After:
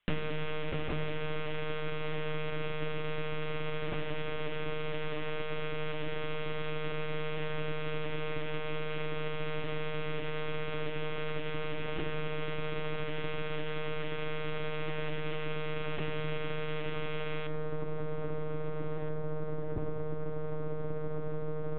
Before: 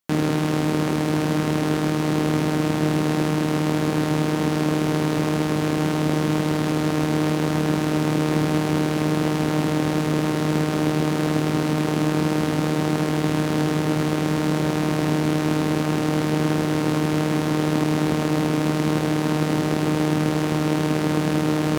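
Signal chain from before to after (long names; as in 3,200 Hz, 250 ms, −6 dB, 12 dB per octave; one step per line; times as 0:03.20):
linear-prediction vocoder at 8 kHz pitch kept
parametric band 2,900 Hz +12 dB 1.6 octaves, from 0:17.47 −5.5 dB, from 0:19.09 −13 dB
downward compressor 4 to 1, threshold −36 dBFS, peak gain reduction 17.5 dB
high-frequency loss of the air 250 metres
convolution reverb RT60 1.3 s, pre-delay 5 ms, DRR 7.5 dB
level +4 dB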